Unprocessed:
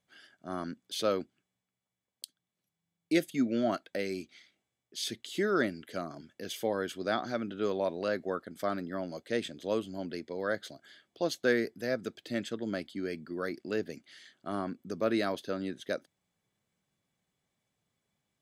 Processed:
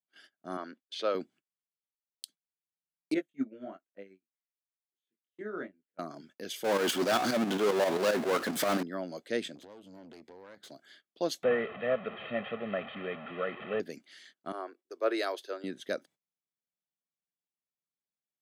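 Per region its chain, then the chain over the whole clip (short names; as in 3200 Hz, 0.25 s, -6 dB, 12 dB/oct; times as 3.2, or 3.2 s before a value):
0.57–1.15 BPF 380–3700 Hz + expander -59 dBFS
3.14–5.99 chorus 1.1 Hz, delay 20 ms, depth 3.7 ms + running mean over 9 samples + upward expander 2.5:1, over -41 dBFS
6.64–8.83 tremolo saw up 7.5 Hz, depth 95% + power-law curve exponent 0.35
9.55–10.71 low shelf 350 Hz +7 dB + compressor 10:1, threshold -40 dBFS + tube stage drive 44 dB, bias 0.75
11.43–13.8 delta modulation 16 kbps, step -37 dBFS + comb 1.6 ms, depth 85%
14.52–15.64 Chebyshev high-pass 360 Hz, order 4 + three-band expander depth 70%
whole clip: gate -56 dBFS, range -22 dB; HPF 180 Hz 12 dB/oct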